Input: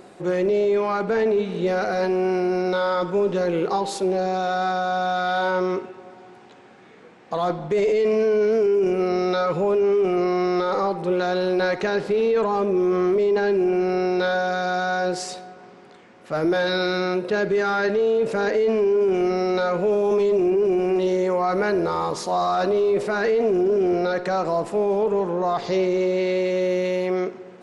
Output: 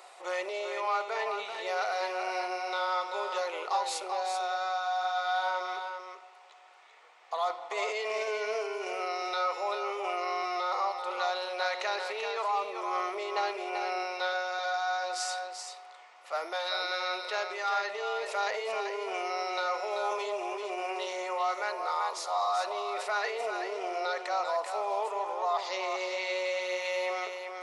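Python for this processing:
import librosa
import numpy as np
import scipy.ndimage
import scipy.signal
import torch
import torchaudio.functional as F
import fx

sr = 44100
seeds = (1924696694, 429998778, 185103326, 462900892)

p1 = scipy.signal.sosfilt(scipy.signal.butter(4, 720.0, 'highpass', fs=sr, output='sos'), x)
p2 = fx.notch(p1, sr, hz=1600.0, q=5.8)
p3 = fx.rider(p2, sr, range_db=3, speed_s=0.5)
p4 = p3 + fx.echo_single(p3, sr, ms=387, db=-6.5, dry=0)
y = F.gain(torch.from_numpy(p4), -2.5).numpy()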